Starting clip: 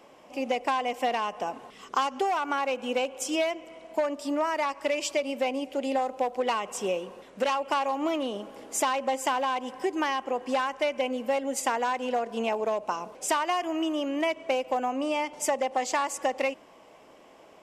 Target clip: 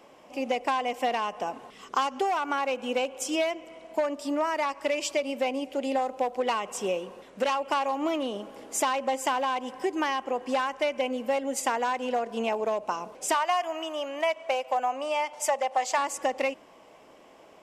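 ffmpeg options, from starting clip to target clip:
-filter_complex "[0:a]asettb=1/sr,asplit=3[a][b][c];[a]atrim=end=13.344[d];[b]atrim=start=13.34:end=15.98,asetpts=PTS-STARTPTS,afade=t=in:d=0.004:c=qsin,afade=t=out:st=2.636:d=0.004:c=qsin,lowshelf=f=470:t=q:w=1.5:g=-10[e];[c]atrim=start=15.976[f];[d][e]acrossfade=d=0.004:c1=hsin:c2=qsin[g];[g][f]acrossfade=d=0.004:c1=qsin:c2=hsin"

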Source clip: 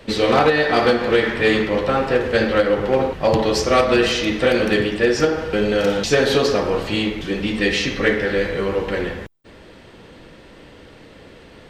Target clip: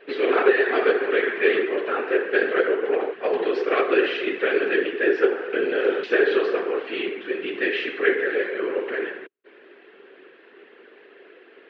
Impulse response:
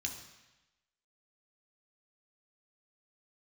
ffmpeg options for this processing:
-af "afftfilt=real='hypot(re,im)*cos(2*PI*random(0))':imag='hypot(re,im)*sin(2*PI*random(1))':win_size=512:overlap=0.75,highpass=f=330:w=0.5412,highpass=f=330:w=1.3066,equalizer=f=400:t=q:w=4:g=10,equalizer=f=590:t=q:w=4:g=-6,equalizer=f=900:t=q:w=4:g=-6,equalizer=f=1.6k:t=q:w=4:g=7,equalizer=f=2.6k:t=q:w=4:g=3,lowpass=f=3k:w=0.5412,lowpass=f=3k:w=1.3066"

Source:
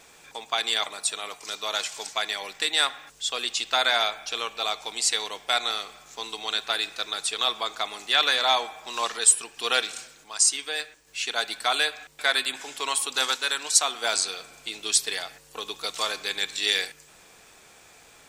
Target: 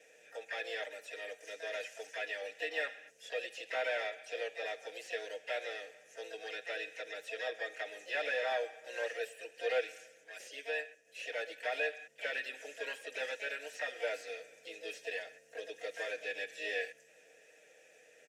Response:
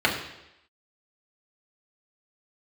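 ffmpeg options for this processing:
-filter_complex "[0:a]acrossover=split=3700[a][b];[b]acompressor=threshold=-39dB:ratio=4:attack=1:release=60[c];[a][c]amix=inputs=2:normalize=0,highshelf=f=5k:t=q:w=3:g=6,aecho=1:1:6.5:0.85,asplit=3[d][e][f];[e]asetrate=66075,aresample=44100,atempo=0.66742,volume=-4dB[g];[f]asetrate=88200,aresample=44100,atempo=0.5,volume=-15dB[h];[d][g][h]amix=inputs=3:normalize=0,acrossover=split=730|1400[i][j][k];[k]asoftclip=type=hard:threshold=-25dB[l];[i][j][l]amix=inputs=3:normalize=0,asplit=3[m][n][o];[m]bandpass=f=530:t=q:w=8,volume=0dB[p];[n]bandpass=f=1.84k:t=q:w=8,volume=-6dB[q];[o]bandpass=f=2.48k:t=q:w=8,volume=-9dB[r];[p][q][r]amix=inputs=3:normalize=0,volume=1dB"

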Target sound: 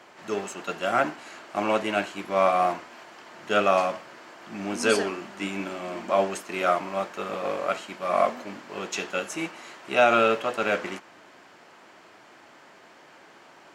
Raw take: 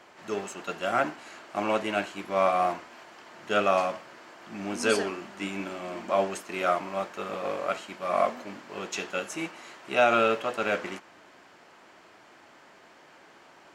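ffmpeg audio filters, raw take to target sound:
-af "highpass=77,volume=2.5dB"

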